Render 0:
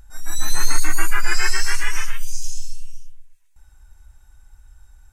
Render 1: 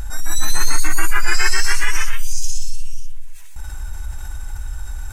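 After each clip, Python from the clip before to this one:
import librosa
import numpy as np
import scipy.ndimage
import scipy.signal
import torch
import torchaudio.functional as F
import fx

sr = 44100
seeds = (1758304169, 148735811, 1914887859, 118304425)

y = fx.env_flatten(x, sr, amount_pct=50)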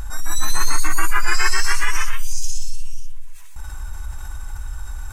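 y = fx.peak_eq(x, sr, hz=1100.0, db=7.5, octaves=0.41)
y = y * 10.0 ** (-2.0 / 20.0)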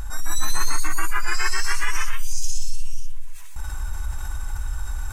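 y = fx.rider(x, sr, range_db=5, speed_s=2.0)
y = y * 10.0 ** (-3.0 / 20.0)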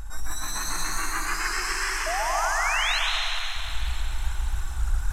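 y = fx.spec_paint(x, sr, seeds[0], shape='rise', start_s=2.06, length_s=0.93, low_hz=620.0, high_hz=4300.0, level_db=-24.0)
y = fx.rev_plate(y, sr, seeds[1], rt60_s=3.8, hf_ratio=0.9, predelay_ms=115, drr_db=-3.5)
y = fx.doppler_dist(y, sr, depth_ms=0.39)
y = y * 10.0 ** (-5.5 / 20.0)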